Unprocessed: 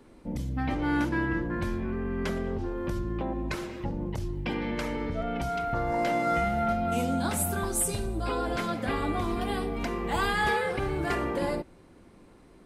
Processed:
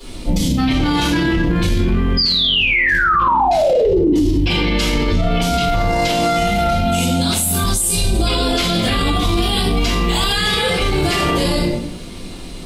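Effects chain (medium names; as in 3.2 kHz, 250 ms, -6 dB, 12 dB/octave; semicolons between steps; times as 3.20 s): resonant high shelf 2.3 kHz +12 dB, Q 1.5; painted sound fall, 2.17–4.13 s, 280–5000 Hz -13 dBFS; reverberation RT60 0.60 s, pre-delay 3 ms, DRR -12.5 dB; loudness maximiser +12 dB; trim -7.5 dB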